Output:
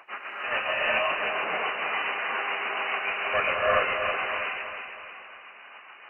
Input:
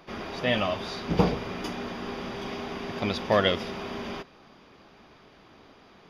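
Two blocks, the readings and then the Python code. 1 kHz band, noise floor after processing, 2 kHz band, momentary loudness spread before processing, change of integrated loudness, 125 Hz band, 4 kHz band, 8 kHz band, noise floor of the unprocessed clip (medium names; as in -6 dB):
+5.0 dB, -48 dBFS, +9.5 dB, 12 LU, +2.5 dB, -18.0 dB, 0.0 dB, under -30 dB, -55 dBFS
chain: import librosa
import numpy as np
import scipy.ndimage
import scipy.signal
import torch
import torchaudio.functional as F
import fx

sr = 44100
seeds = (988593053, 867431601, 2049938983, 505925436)

p1 = fx.dynamic_eq(x, sr, hz=480.0, q=1.1, threshold_db=-38.0, ratio=4.0, max_db=5)
p2 = fx.rider(p1, sr, range_db=4, speed_s=0.5)
p3 = p1 + F.gain(torch.from_numpy(p2), 1.5).numpy()
p4 = fx.filter_lfo_highpass(p3, sr, shape='saw_up', hz=2.1, low_hz=930.0, high_hz=2300.0, q=0.8)
p5 = np.clip(p4, -10.0 ** (-21.5 / 20.0), 10.0 ** (-21.5 / 20.0))
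p6 = p5 * (1.0 - 0.82 / 2.0 + 0.82 / 2.0 * np.cos(2.0 * np.pi * 7.1 * (np.arange(len(p5)) / sr)))
p7 = fx.brickwall_lowpass(p6, sr, high_hz=3000.0)
p8 = p7 + fx.echo_feedback(p7, sr, ms=321, feedback_pct=45, wet_db=-7.0, dry=0)
y = fx.rev_gated(p8, sr, seeds[0], gate_ms=440, shape='rising', drr_db=-7.0)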